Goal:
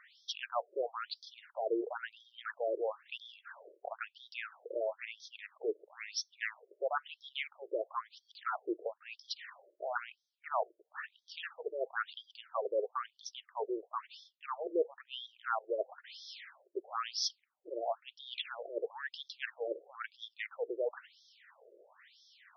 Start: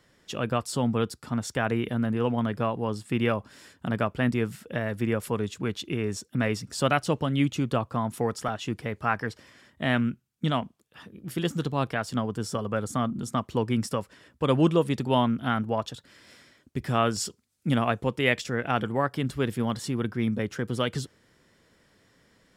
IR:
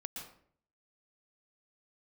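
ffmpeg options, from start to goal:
-af "highpass=f=300:w=0.5412,highpass=f=300:w=1.3066,areverse,acompressor=threshold=0.0126:ratio=5,areverse,afftfilt=real='re*between(b*sr/1024,440*pow(4600/440,0.5+0.5*sin(2*PI*1*pts/sr))/1.41,440*pow(4600/440,0.5+0.5*sin(2*PI*1*pts/sr))*1.41)':imag='im*between(b*sr/1024,440*pow(4600/440,0.5+0.5*sin(2*PI*1*pts/sr))/1.41,440*pow(4600/440,0.5+0.5*sin(2*PI*1*pts/sr))*1.41)':win_size=1024:overlap=0.75,volume=2.82"

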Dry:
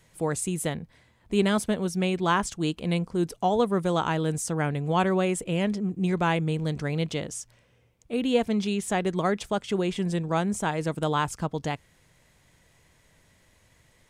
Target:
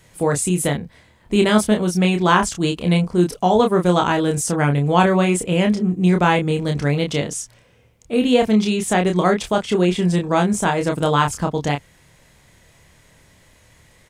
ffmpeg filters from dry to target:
-filter_complex "[0:a]asplit=2[s0][s1];[s1]adelay=28,volume=0.596[s2];[s0][s2]amix=inputs=2:normalize=0,volume=2.37"

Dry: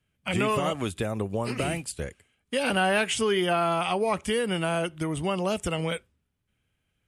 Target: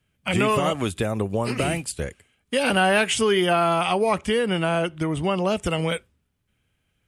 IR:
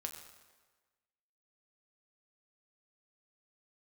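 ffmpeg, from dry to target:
-filter_complex "[0:a]asettb=1/sr,asplit=3[s0][s1][s2];[s0]atrim=end=4.184[s3];[s1]atrim=start=4.18:end=5.66,asetpts=PTS-STARTPTS,afade=t=in:d=0.004:c=qsin,afade=t=out:st=1.476:d=0.004:c=qsin,highshelf=f=7900:g=-11.5[s4];[s2]atrim=start=5.656[s5];[s3][s4]acrossfade=d=0.004:c1=hsin:c2=qsin[s6];[s6][s5]acrossfade=d=0.004:c1=qsin:c2=hsin,volume=1.68"

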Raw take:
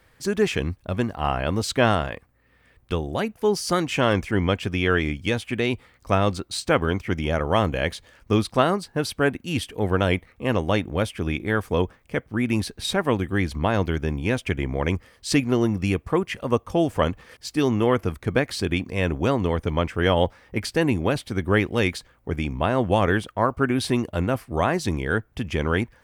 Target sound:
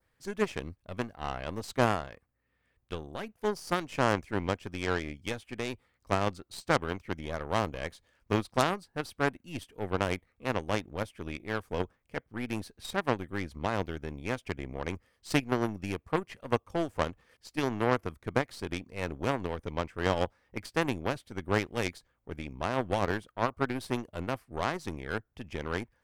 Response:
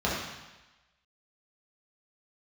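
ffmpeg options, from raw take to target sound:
-af "aeval=exprs='0.668*(cos(1*acos(clip(val(0)/0.668,-1,1)))-cos(1*PI/2))+0.0422*(cos(3*acos(clip(val(0)/0.668,-1,1)))-cos(3*PI/2))+0.15*(cos(6*acos(clip(val(0)/0.668,-1,1)))-cos(6*PI/2))+0.0473*(cos(7*acos(clip(val(0)/0.668,-1,1)))-cos(7*PI/2))+0.119*(cos(8*acos(clip(val(0)/0.668,-1,1)))-cos(8*PI/2))':c=same,adynamicequalizer=threshold=0.00708:dfrequency=2800:dqfactor=1.2:tfrequency=2800:tqfactor=1.2:attack=5:release=100:ratio=0.375:range=2:mode=cutabove:tftype=bell,volume=0.501"

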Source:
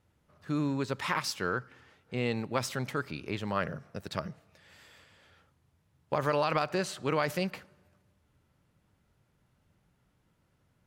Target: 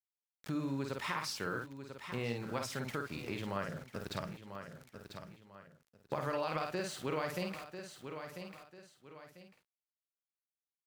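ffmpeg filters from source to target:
-filter_complex "[0:a]asplit=2[s0][s1];[s1]aecho=0:1:34|51:0.141|0.596[s2];[s0][s2]amix=inputs=2:normalize=0,aeval=exprs='val(0)*gte(abs(val(0)),0.00531)':c=same,asplit=2[s3][s4];[s4]aecho=0:1:994|1988:0.141|0.024[s5];[s3][s5]amix=inputs=2:normalize=0,acompressor=threshold=0.00224:ratio=2,volume=2.11"

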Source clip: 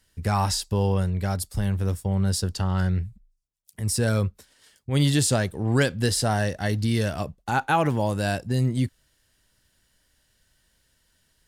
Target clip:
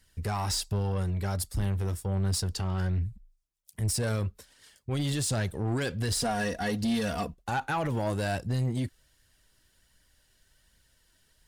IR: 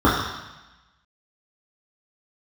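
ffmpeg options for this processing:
-filter_complex "[0:a]asettb=1/sr,asplit=3[s0][s1][s2];[s0]atrim=end=6.124[s3];[s1]atrim=start=6.12:end=7.34,asetpts=PTS-STARTPTS,afade=t=in:d=0.004:c=qsin,afade=t=out:st=1.216:d=0.004:c=qsin,aecho=1:1:4.2:0.83,atrim=end_sample=53802[s4];[s2]atrim=start=7.336[s5];[s3][s4]acrossfade=d=0.004:c1=hsin:c2=qsin[s6];[s6][s5]acrossfade=d=0.004:c1=qsin:c2=hsin,alimiter=limit=0.133:level=0:latency=1:release=49,flanger=delay=0.4:depth=2.8:regen=57:speed=1.3:shape=triangular,asoftclip=type=tanh:threshold=0.0447,volume=1.58"

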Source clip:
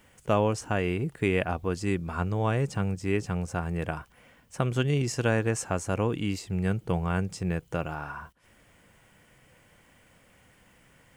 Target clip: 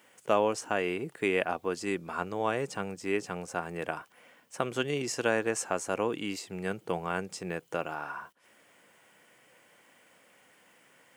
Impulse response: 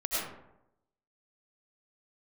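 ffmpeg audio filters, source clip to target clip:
-af "highpass=310"

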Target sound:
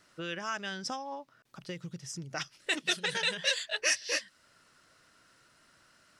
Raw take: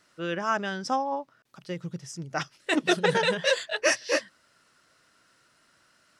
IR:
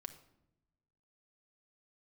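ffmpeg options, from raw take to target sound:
-filter_complex "[0:a]lowshelf=f=84:g=7,acrossover=split=1900[s0][s1];[s0]acompressor=threshold=0.0126:ratio=6[s2];[s2][s1]amix=inputs=2:normalize=0"

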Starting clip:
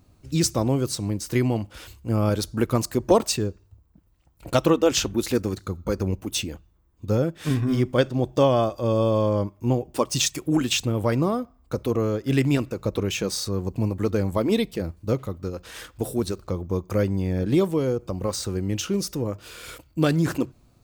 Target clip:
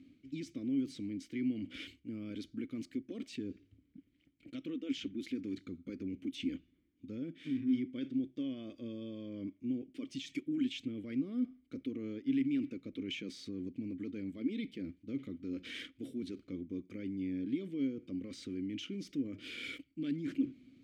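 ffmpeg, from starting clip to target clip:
-filter_complex "[0:a]areverse,acompressor=threshold=0.02:ratio=6,areverse,alimiter=level_in=2.24:limit=0.0631:level=0:latency=1:release=21,volume=0.447,asplit=3[s0][s1][s2];[s0]bandpass=f=270:t=q:w=8,volume=1[s3];[s1]bandpass=f=2290:t=q:w=8,volume=0.501[s4];[s2]bandpass=f=3010:t=q:w=8,volume=0.355[s5];[s3][s4][s5]amix=inputs=3:normalize=0,volume=3.76"

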